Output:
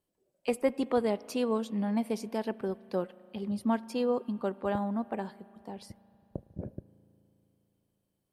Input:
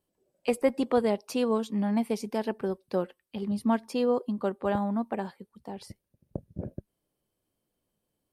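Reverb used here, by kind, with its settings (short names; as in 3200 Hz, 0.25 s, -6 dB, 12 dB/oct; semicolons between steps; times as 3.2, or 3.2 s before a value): spring tank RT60 3.3 s, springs 36 ms, chirp 65 ms, DRR 19 dB; gain -3 dB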